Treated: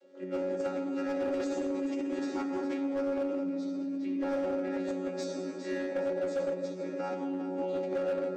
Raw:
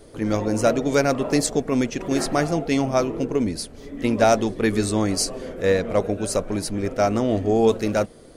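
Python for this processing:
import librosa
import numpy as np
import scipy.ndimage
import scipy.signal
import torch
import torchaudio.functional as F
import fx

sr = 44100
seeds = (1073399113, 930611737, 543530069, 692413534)

p1 = fx.chord_vocoder(x, sr, chord='bare fifth', root=54)
p2 = fx.high_shelf(p1, sr, hz=3400.0, db=-10.0)
p3 = p2 + fx.echo_feedback(p2, sr, ms=410, feedback_pct=33, wet_db=-9.5, dry=0)
p4 = fx.rev_fdn(p3, sr, rt60_s=2.4, lf_ratio=1.55, hf_ratio=0.5, size_ms=34.0, drr_db=-4.5)
p5 = fx.over_compress(p4, sr, threshold_db=-17.0, ratio=-0.5)
p6 = p4 + (p5 * librosa.db_to_amplitude(-0.5))
p7 = scipy.signal.sosfilt(scipy.signal.butter(4, 400.0, 'highpass', fs=sr, output='sos'), p6)
p8 = fx.peak_eq(p7, sr, hz=930.0, db=-13.5, octaves=1.4)
p9 = np.clip(p8, -10.0 ** (-18.0 / 20.0), 10.0 ** (-18.0 / 20.0))
y = p9 * librosa.db_to_amplitude(-8.5)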